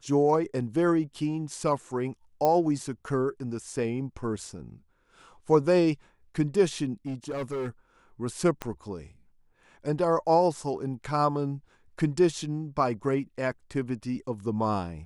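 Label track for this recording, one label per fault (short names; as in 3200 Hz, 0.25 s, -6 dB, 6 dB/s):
2.450000	2.450000	pop -13 dBFS
7.060000	7.690000	clipped -28.5 dBFS
8.620000	8.620000	pop -17 dBFS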